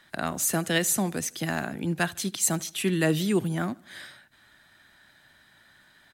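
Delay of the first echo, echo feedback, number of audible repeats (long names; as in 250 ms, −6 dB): 76 ms, 48%, 2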